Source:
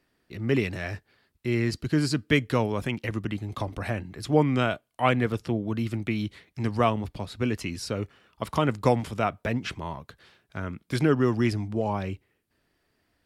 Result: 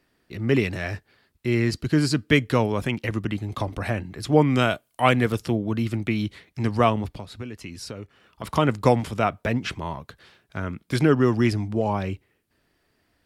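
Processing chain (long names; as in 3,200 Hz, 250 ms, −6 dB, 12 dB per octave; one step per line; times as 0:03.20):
0:04.50–0:05.56: high-shelf EQ 5,400 Hz +9.5 dB
0:07.06–0:08.44: downward compressor 5 to 1, threshold −37 dBFS, peak gain reduction 14 dB
level +3.5 dB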